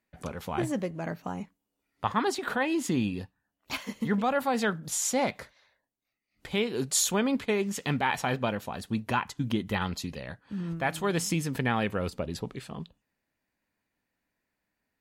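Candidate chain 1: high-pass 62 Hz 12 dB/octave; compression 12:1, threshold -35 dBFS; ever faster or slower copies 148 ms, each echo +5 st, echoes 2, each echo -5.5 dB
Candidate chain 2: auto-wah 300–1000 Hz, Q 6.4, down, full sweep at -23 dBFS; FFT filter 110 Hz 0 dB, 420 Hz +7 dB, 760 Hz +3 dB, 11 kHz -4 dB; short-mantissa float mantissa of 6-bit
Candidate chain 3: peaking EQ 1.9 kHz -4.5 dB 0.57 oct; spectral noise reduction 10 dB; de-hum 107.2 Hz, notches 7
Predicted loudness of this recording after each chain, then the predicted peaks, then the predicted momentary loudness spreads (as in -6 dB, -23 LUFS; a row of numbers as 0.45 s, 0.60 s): -39.5 LUFS, -35.0 LUFS, -30.5 LUFS; -18.5 dBFS, -17.0 dBFS, -13.0 dBFS; 7 LU, 20 LU, 13 LU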